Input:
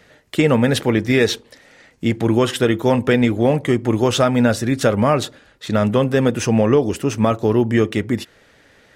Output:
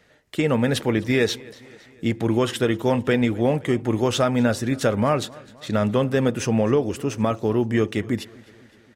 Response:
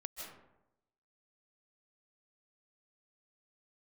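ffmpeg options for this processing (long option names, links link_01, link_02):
-filter_complex "[0:a]dynaudnorm=framelen=140:gausssize=7:maxgain=11.5dB,asplit=2[link_01][link_02];[link_02]aecho=0:1:257|514|771|1028:0.0708|0.0404|0.023|0.0131[link_03];[link_01][link_03]amix=inputs=2:normalize=0,volume=-7.5dB"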